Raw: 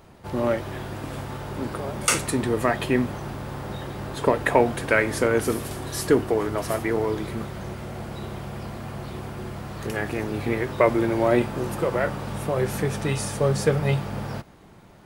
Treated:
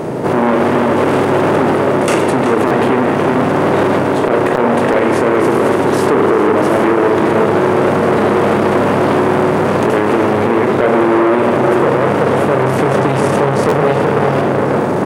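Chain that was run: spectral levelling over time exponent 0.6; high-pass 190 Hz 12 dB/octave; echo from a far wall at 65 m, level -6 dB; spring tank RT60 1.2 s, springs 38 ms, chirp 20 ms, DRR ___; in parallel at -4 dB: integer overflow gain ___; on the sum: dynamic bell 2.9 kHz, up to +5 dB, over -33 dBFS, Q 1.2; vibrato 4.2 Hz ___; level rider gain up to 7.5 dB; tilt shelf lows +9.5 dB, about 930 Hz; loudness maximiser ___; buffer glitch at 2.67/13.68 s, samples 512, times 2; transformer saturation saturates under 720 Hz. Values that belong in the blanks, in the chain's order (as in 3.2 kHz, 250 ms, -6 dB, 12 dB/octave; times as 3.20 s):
5 dB, 3.5 dB, 6.7 cents, +6.5 dB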